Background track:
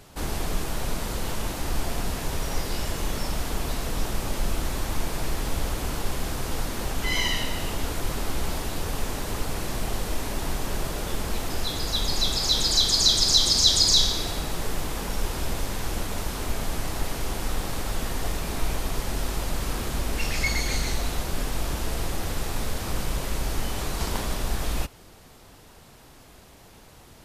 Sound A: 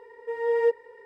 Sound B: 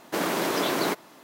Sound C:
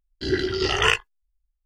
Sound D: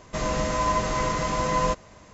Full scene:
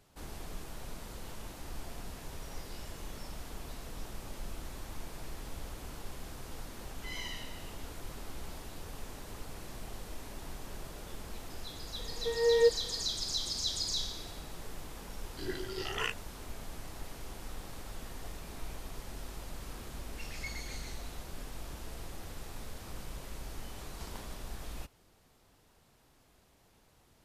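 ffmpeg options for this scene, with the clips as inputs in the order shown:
ffmpeg -i bed.wav -i cue0.wav -i cue1.wav -i cue2.wav -filter_complex "[0:a]volume=-15.5dB[link_01];[1:a]aecho=1:1:3.9:0.72[link_02];[3:a]highpass=frequency=86:width=0.5412,highpass=frequency=86:width=1.3066[link_03];[link_02]atrim=end=1.05,asetpts=PTS-STARTPTS,volume=-5dB,afade=type=in:duration=0.004:curve=hsin,afade=type=out:start_time=1.046:duration=0.004:curve=hsin,adelay=11980[link_04];[link_03]atrim=end=1.65,asetpts=PTS-STARTPTS,volume=-15.5dB,afade=type=in:duration=0.004:curve=hsin,afade=type=out:start_time=1.646:duration=0.004:curve=hsin,adelay=15160[link_05];[link_01][link_04][link_05]amix=inputs=3:normalize=0" out.wav

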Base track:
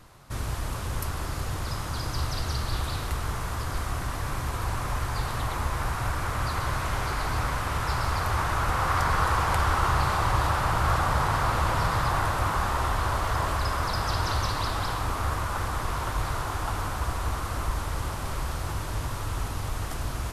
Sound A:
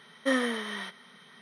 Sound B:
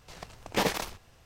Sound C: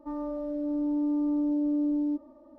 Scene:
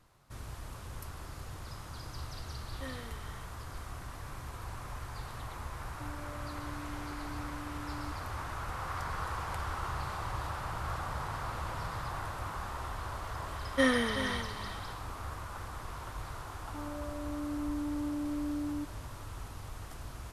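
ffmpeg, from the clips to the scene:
ffmpeg -i bed.wav -i cue0.wav -i cue1.wav -i cue2.wav -filter_complex "[1:a]asplit=2[link_01][link_02];[3:a]asplit=2[link_03][link_04];[0:a]volume=-13dB[link_05];[link_03]acompressor=threshold=-43dB:ratio=6:attack=3.2:release=140:knee=1:detection=peak[link_06];[link_02]aecho=1:1:376:0.282[link_07];[link_01]atrim=end=1.41,asetpts=PTS-STARTPTS,volume=-18dB,afade=type=in:duration=0.004:curve=hsin,afade=type=out:start_time=1.406:duration=0.004:curve=hsin,adelay=2550[link_08];[link_06]atrim=end=2.58,asetpts=PTS-STARTPTS,volume=-3dB,afade=type=in:duration=0.004:curve=hsin,afade=type=out:start_time=2.576:duration=0.004:curve=hsin,adelay=5950[link_09];[link_07]atrim=end=1.41,asetpts=PTS-STARTPTS,afade=type=in:duration=0.004:curve=hsin,afade=type=out:start_time=1.406:duration=0.004:curve=hsin,adelay=13520[link_10];[link_04]atrim=end=2.58,asetpts=PTS-STARTPTS,volume=-8.5dB,afade=type=in:duration=0.004:curve=hsin,afade=type=out:start_time=2.576:duration=0.004:curve=hsin,adelay=735588S[link_11];[link_05][link_08][link_09][link_10][link_11]amix=inputs=5:normalize=0" out.wav

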